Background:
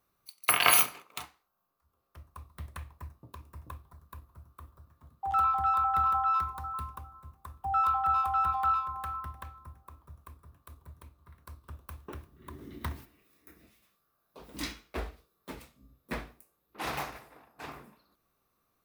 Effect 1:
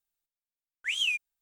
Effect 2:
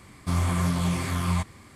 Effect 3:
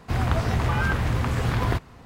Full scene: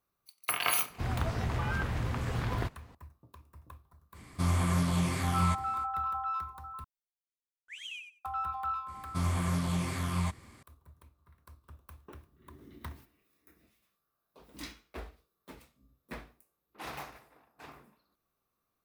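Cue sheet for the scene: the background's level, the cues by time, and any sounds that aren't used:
background -7 dB
0.9 add 3 -9 dB
4.12 add 2 -3.5 dB, fades 0.05 s
6.84 replace with 1 -15.5 dB + feedback echo 91 ms, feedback 17%, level -6 dB
8.88 add 2 -6 dB

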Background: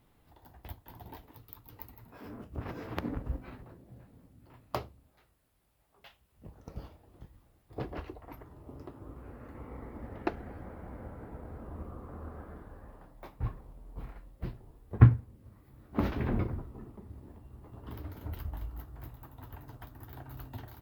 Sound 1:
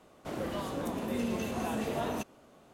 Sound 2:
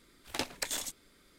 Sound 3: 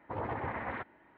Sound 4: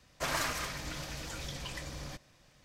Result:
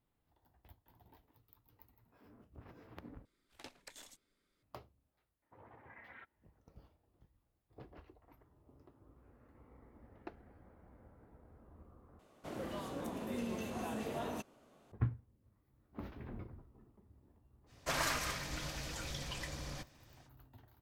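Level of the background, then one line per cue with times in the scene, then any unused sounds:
background -16.5 dB
3.25 replace with 2 -17.5 dB + high shelf 7000 Hz -5.5 dB
5.42 add 3 -11 dB + spectral noise reduction 12 dB
12.19 replace with 1 -7 dB
17.66 add 4 -2 dB, fades 0.05 s

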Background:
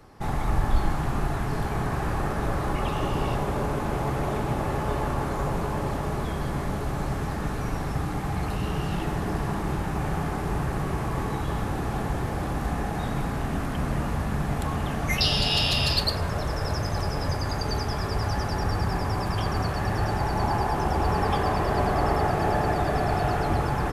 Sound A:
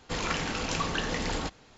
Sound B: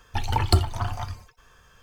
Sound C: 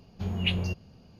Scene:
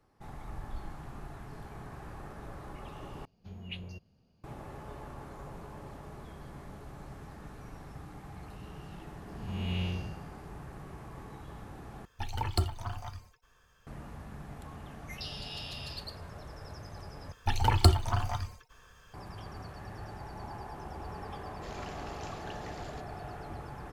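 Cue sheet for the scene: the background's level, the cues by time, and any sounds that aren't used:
background -18 dB
3.25 replace with C -14.5 dB
9.28 add C -2 dB + time blur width 0.285 s
12.05 replace with B -10 dB + bell 15000 Hz +3.5 dB 0.34 oct
17.32 replace with B -2 dB
21.52 add A -17 dB

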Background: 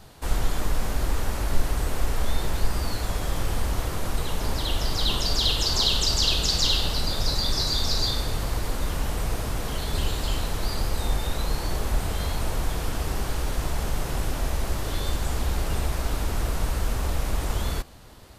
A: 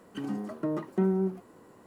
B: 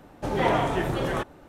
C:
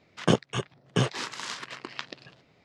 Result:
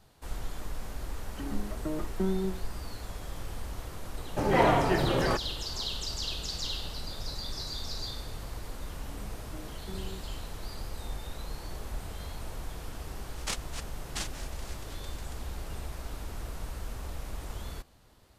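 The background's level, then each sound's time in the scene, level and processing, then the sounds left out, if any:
background -12.5 dB
1.22 add A -4 dB
4.14 add B + notch 3500 Hz, Q 5.9
8.9 add A -18 dB
13.19 add C -13.5 dB + noise vocoder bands 1

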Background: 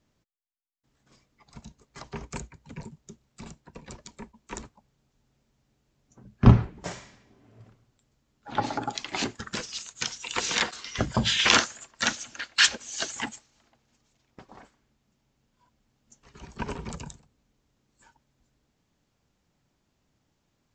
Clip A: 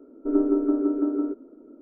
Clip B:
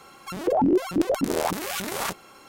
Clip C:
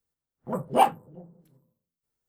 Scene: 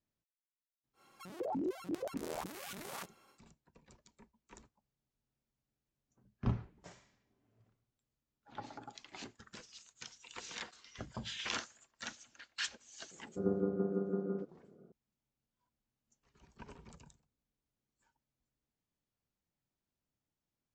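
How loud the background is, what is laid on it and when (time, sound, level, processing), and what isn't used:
background -19 dB
0.93 add B -16.5 dB, fades 0.10 s + HPF 88 Hz
13.11 add A -9 dB + ring modulator 100 Hz
not used: C

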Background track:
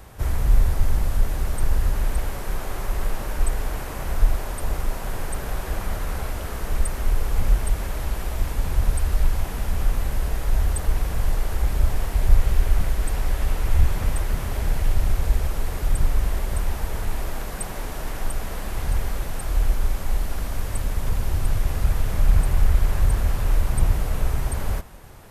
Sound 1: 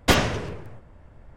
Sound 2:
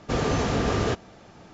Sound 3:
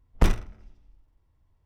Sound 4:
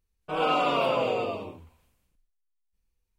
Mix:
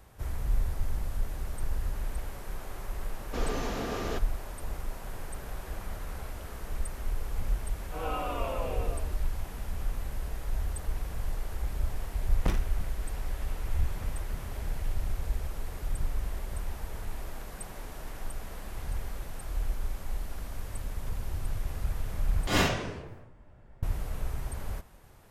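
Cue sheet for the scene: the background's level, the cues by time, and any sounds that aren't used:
background track -11 dB
3.24 add 2 -8.5 dB + bell 120 Hz -9.5 dB
7.63 add 4 -9.5 dB + LPF 2500 Hz
12.24 add 3 -7.5 dB
22.47 replace with 1 -5.5 dB + phase scrambler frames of 0.2 s

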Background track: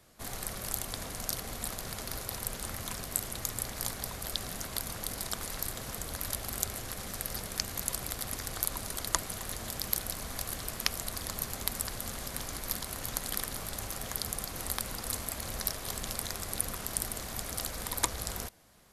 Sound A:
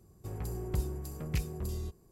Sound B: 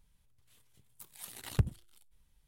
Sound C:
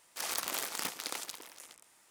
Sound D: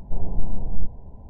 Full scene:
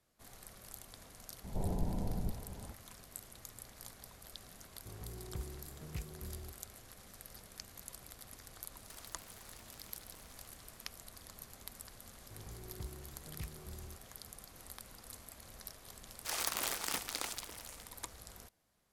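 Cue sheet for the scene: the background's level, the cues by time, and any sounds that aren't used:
background track -16 dB
1.44 add D -1.5 dB + HPF 77 Hz 6 dB/oct
4.61 add A -10.5 dB
8.74 add C -3 dB + compressor, threshold -52 dBFS
12.06 add A -13 dB
16.09 add C -1 dB
not used: B

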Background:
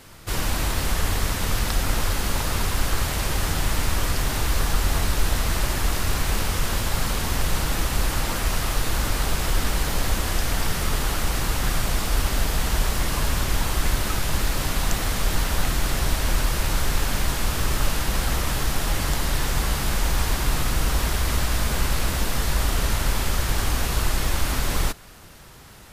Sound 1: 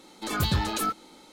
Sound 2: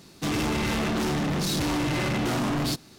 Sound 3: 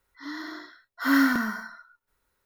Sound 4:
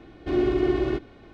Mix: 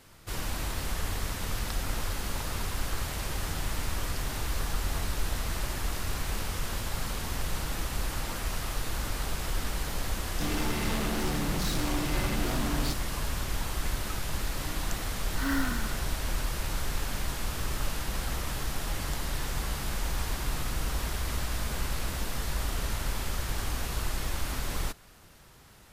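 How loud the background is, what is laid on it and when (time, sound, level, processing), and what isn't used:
background -9 dB
10.18 add 2 -6.5 dB
14.36 add 3 -10 dB
not used: 1, 4

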